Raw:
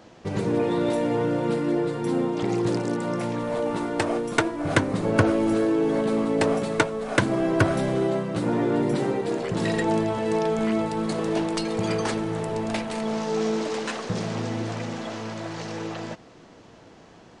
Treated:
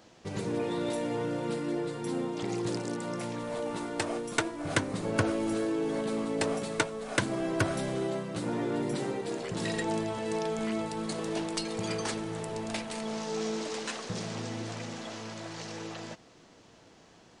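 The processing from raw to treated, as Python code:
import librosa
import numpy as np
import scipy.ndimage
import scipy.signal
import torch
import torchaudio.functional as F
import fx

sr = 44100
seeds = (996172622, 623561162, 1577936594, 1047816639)

y = fx.high_shelf(x, sr, hz=3000.0, db=9.0)
y = y * librosa.db_to_amplitude(-8.5)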